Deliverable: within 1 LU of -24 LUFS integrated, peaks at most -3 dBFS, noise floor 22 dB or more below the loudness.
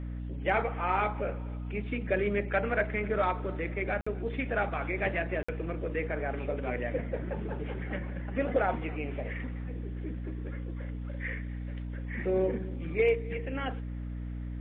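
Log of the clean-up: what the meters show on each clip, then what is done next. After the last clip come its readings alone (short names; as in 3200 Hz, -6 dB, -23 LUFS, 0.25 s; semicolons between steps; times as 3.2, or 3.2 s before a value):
dropouts 2; longest dropout 55 ms; hum 60 Hz; harmonics up to 300 Hz; hum level -34 dBFS; loudness -33.0 LUFS; peak -15.5 dBFS; loudness target -24.0 LUFS
-> interpolate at 4.01/5.43, 55 ms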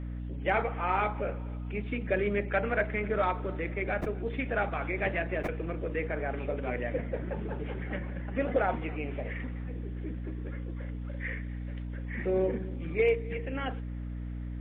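dropouts 0; hum 60 Hz; harmonics up to 300 Hz; hum level -35 dBFS
-> de-hum 60 Hz, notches 5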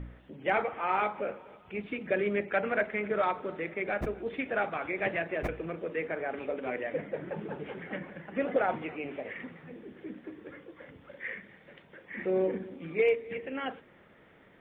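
hum none; loudness -33.0 LUFS; peak -16.5 dBFS; loudness target -24.0 LUFS
-> gain +9 dB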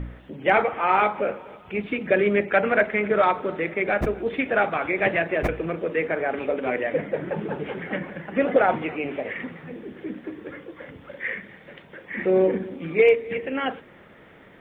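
loudness -24.0 LUFS; peak -7.5 dBFS; noise floor -49 dBFS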